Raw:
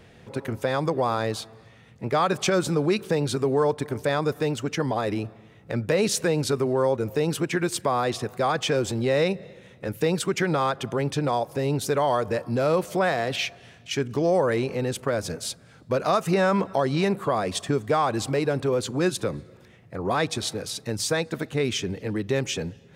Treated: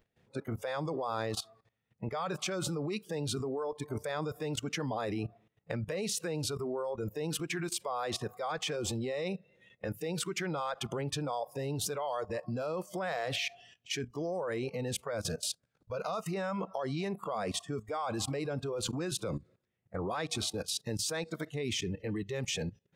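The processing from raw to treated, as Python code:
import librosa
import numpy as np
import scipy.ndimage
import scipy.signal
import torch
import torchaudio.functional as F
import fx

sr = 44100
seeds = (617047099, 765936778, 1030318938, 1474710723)

y = fx.level_steps(x, sr, step_db=17)
y = fx.noise_reduce_blind(y, sr, reduce_db=17)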